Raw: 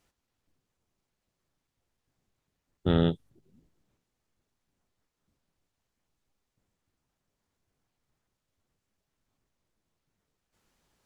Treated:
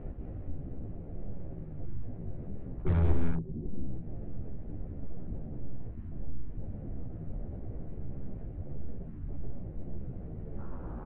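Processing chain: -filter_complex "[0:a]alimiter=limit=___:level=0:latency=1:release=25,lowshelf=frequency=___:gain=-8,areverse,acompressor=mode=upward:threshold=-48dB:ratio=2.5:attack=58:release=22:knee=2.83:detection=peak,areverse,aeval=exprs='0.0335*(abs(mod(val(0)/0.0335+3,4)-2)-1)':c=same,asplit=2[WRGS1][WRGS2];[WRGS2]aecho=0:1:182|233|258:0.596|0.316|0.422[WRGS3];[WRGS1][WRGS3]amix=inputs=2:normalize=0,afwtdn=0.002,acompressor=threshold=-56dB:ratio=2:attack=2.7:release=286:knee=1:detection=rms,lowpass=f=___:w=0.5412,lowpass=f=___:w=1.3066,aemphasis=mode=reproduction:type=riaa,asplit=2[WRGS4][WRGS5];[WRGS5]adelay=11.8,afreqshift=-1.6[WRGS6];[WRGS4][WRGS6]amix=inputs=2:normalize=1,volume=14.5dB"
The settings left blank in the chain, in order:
-13.5dB, 110, 2300, 2300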